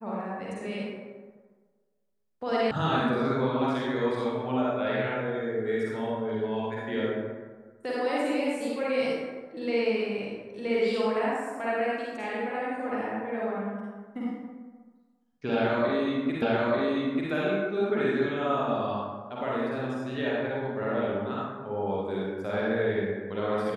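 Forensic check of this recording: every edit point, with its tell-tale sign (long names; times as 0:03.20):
0:02.71: cut off before it has died away
0:16.42: the same again, the last 0.89 s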